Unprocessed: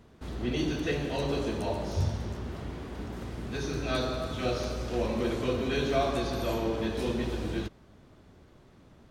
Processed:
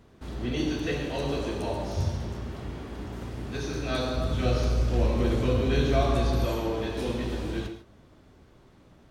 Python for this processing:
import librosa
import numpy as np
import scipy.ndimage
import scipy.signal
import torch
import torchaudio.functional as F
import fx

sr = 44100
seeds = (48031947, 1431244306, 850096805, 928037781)

y = fx.low_shelf(x, sr, hz=160.0, db=11.5, at=(4.17, 6.45))
y = fx.rev_gated(y, sr, seeds[0], gate_ms=170, shape='flat', drr_db=6.5)